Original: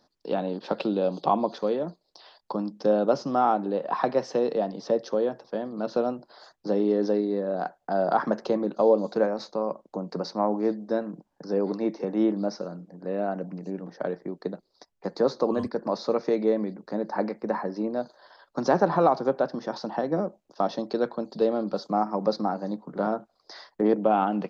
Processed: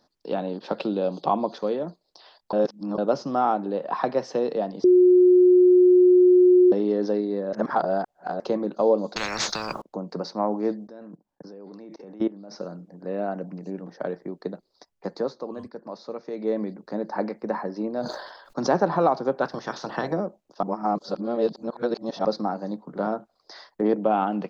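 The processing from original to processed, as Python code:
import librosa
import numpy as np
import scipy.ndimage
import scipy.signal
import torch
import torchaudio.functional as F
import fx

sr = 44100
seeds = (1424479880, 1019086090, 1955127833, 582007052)

y = fx.spectral_comp(x, sr, ratio=10.0, at=(9.16, 9.82))
y = fx.level_steps(y, sr, step_db=21, at=(10.87, 12.56))
y = fx.sustainer(y, sr, db_per_s=52.0, at=(18.0, 18.76))
y = fx.spec_clip(y, sr, under_db=17, at=(19.41, 20.12), fade=0.02)
y = fx.edit(y, sr, fx.reverse_span(start_s=2.53, length_s=0.45),
    fx.bleep(start_s=4.84, length_s=1.88, hz=362.0, db=-11.5),
    fx.reverse_span(start_s=7.53, length_s=0.87),
    fx.fade_down_up(start_s=15.08, length_s=1.51, db=-9.5, fade_s=0.27),
    fx.reverse_span(start_s=20.63, length_s=1.62), tone=tone)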